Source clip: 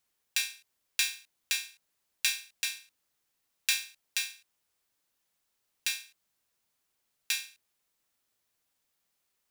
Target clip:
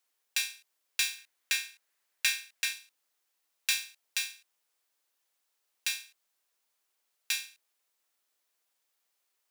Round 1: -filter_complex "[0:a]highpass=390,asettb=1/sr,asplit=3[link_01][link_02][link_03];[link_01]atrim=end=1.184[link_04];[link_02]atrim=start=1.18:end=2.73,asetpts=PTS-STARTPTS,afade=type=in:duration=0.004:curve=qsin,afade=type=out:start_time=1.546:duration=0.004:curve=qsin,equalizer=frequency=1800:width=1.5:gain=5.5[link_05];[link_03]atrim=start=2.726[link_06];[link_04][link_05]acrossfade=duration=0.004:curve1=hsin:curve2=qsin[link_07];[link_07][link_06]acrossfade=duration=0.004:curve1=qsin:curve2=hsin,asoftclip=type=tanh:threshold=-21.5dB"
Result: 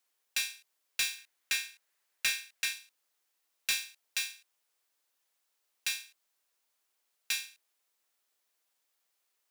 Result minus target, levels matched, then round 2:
soft clipping: distortion +8 dB
-filter_complex "[0:a]highpass=390,asettb=1/sr,asplit=3[link_01][link_02][link_03];[link_01]atrim=end=1.184[link_04];[link_02]atrim=start=1.18:end=2.73,asetpts=PTS-STARTPTS,afade=type=in:duration=0.004:curve=qsin,afade=type=out:start_time=1.546:duration=0.004:curve=qsin,equalizer=frequency=1800:width=1.5:gain=5.5[link_05];[link_03]atrim=start=2.726[link_06];[link_04][link_05]acrossfade=duration=0.004:curve1=hsin:curve2=qsin[link_07];[link_07][link_06]acrossfade=duration=0.004:curve1=qsin:curve2=hsin,asoftclip=type=tanh:threshold=-13.5dB"

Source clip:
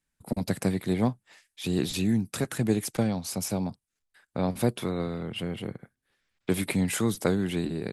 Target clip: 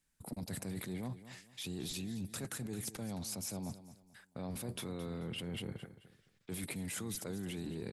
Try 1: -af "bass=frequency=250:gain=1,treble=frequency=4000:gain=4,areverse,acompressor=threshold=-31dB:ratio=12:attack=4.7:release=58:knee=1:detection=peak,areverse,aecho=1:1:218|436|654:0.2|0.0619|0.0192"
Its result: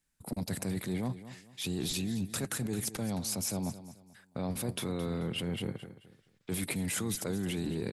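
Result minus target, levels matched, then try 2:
downward compressor: peak gain reduction −7.5 dB
-af "bass=frequency=250:gain=1,treble=frequency=4000:gain=4,areverse,acompressor=threshold=-39dB:ratio=12:attack=4.7:release=58:knee=1:detection=peak,areverse,aecho=1:1:218|436|654:0.2|0.0619|0.0192"

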